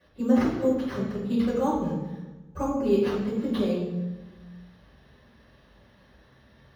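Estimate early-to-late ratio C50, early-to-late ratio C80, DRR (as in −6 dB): 1.5 dB, 4.5 dB, −13.0 dB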